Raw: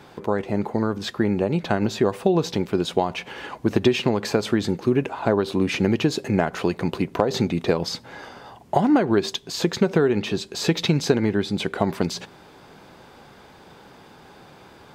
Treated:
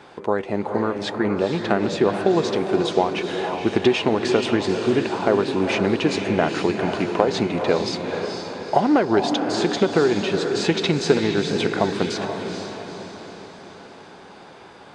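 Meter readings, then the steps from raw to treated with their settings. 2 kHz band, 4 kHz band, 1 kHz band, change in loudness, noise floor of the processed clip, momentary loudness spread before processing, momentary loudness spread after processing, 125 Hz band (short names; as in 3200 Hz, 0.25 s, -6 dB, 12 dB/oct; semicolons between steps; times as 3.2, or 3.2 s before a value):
+3.5 dB, +2.0 dB, +3.5 dB, +1.5 dB, -44 dBFS, 7 LU, 11 LU, -2.5 dB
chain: downsampling 22050 Hz; tone controls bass -8 dB, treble -4 dB; on a send: diffused feedback echo 0.465 s, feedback 52%, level -5.5 dB; on the sum: Doppler distortion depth 0.1 ms; gain +2.5 dB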